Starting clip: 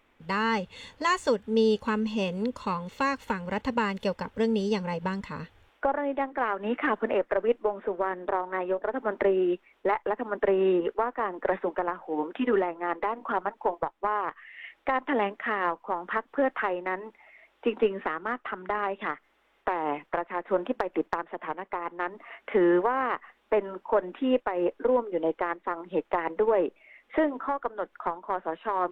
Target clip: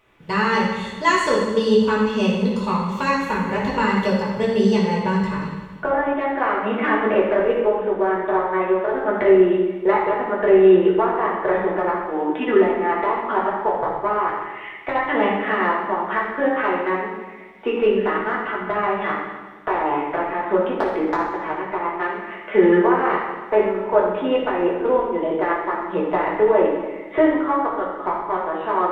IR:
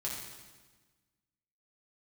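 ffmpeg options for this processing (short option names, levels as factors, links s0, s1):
-filter_complex "[1:a]atrim=start_sample=2205[s0];[0:a][s0]afir=irnorm=-1:irlink=0,volume=2"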